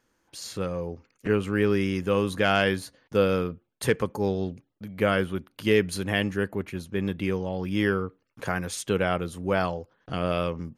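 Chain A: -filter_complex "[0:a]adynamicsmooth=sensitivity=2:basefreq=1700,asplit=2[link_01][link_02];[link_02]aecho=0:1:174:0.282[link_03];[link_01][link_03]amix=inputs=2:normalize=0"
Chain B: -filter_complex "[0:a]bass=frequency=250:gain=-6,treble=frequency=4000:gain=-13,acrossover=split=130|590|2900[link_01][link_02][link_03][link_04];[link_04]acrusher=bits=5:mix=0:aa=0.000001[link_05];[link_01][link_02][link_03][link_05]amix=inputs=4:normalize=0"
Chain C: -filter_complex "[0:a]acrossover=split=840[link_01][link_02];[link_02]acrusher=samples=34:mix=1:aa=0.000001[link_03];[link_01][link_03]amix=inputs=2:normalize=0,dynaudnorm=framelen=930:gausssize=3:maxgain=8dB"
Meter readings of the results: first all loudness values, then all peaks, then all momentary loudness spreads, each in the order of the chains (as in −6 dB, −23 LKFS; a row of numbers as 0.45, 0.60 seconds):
−27.0, −28.5, −22.0 LKFS; −8.5, −11.0, −2.5 dBFS; 11, 11, 13 LU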